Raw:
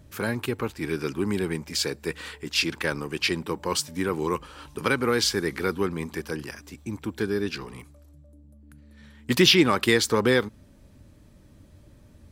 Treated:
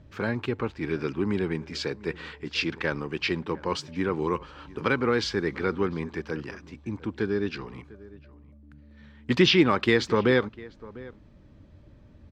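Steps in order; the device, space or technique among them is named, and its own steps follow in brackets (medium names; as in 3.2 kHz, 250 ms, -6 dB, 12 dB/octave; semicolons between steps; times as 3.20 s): shout across a valley (distance through air 180 m; echo from a far wall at 120 m, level -20 dB)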